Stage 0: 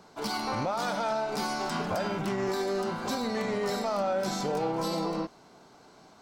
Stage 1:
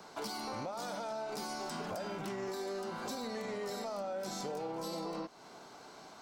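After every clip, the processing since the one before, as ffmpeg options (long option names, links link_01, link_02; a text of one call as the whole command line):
ffmpeg -i in.wav -filter_complex "[0:a]lowshelf=frequency=280:gain=-9,acrossover=split=390|620|5000[link_01][link_02][link_03][link_04];[link_03]alimiter=level_in=10.5dB:limit=-24dB:level=0:latency=1,volume=-10.5dB[link_05];[link_01][link_02][link_05][link_04]amix=inputs=4:normalize=0,acompressor=threshold=-44dB:ratio=3,volume=4dB" out.wav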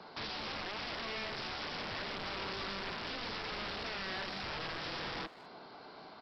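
ffmpeg -i in.wav -filter_complex "[0:a]aresample=11025,aeval=exprs='(mod(66.8*val(0)+1,2)-1)/66.8':channel_layout=same,aresample=44100,asplit=2[link_01][link_02];[link_02]adelay=200,highpass=300,lowpass=3400,asoftclip=type=hard:threshold=-39.5dB,volume=-15dB[link_03];[link_01][link_03]amix=inputs=2:normalize=0,volume=1dB" out.wav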